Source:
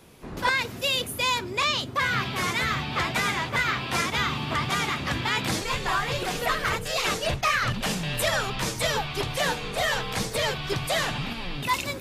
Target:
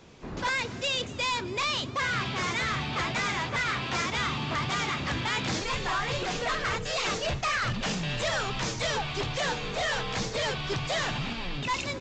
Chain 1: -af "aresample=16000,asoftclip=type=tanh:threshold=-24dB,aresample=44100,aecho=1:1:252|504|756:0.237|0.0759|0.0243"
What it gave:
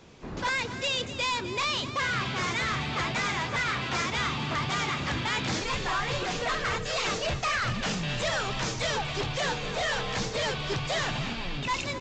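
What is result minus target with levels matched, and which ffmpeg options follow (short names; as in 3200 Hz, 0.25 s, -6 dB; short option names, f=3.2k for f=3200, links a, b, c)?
echo-to-direct +9.5 dB
-af "aresample=16000,asoftclip=type=tanh:threshold=-24dB,aresample=44100,aecho=1:1:252|504:0.0794|0.0254"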